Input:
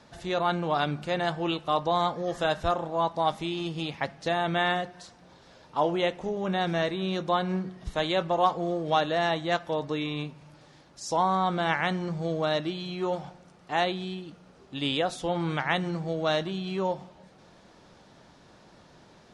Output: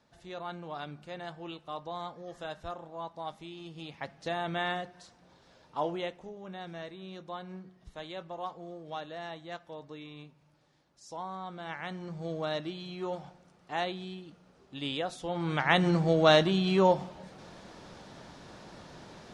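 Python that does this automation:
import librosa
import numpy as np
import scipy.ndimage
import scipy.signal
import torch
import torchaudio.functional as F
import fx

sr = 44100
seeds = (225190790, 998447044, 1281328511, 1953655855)

y = fx.gain(x, sr, db=fx.line((3.61, -13.5), (4.27, -6.5), (5.87, -6.5), (6.38, -15.0), (11.58, -15.0), (12.3, -6.5), (15.27, -6.5), (15.89, 5.5)))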